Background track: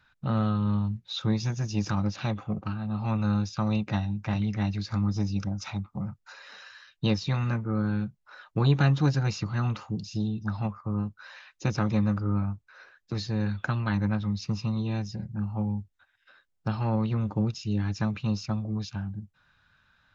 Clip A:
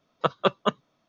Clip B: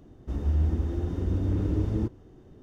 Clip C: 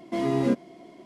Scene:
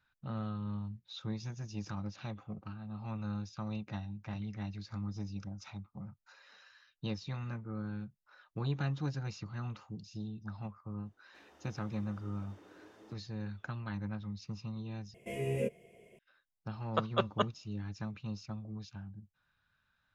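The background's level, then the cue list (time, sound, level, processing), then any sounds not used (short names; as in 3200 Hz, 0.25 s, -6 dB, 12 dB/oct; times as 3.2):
background track -12.5 dB
11.06 add B -12 dB + HPF 740 Hz
15.14 replace with C -0.5 dB + EQ curve 110 Hz 0 dB, 210 Hz -11 dB, 310 Hz -28 dB, 450 Hz +3 dB, 730 Hz -17 dB, 1200 Hz -27 dB, 2600 Hz +3 dB, 4100 Hz -27 dB, 7500 Hz -4 dB, 11000 Hz +1 dB
16.73 add A -4.5 dB + limiter -11 dBFS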